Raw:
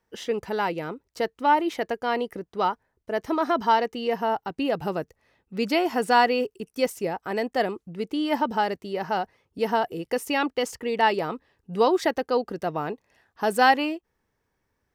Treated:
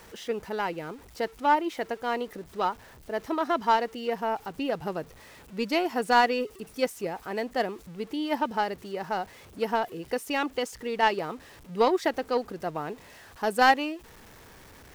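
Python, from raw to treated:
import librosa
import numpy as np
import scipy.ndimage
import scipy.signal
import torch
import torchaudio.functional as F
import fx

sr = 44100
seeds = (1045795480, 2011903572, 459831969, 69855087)

y = x + 0.5 * 10.0 ** (-32.0 / 20.0) * np.sign(x)
y = fx.power_curve(y, sr, exponent=1.4)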